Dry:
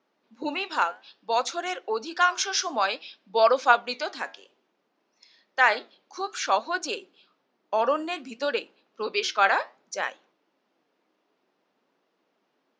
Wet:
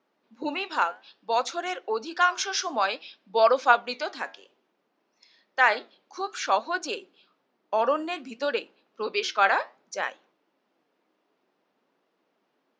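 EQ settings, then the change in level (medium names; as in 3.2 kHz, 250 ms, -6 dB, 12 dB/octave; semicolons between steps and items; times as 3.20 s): treble shelf 4.7 kHz -4.5 dB; 0.0 dB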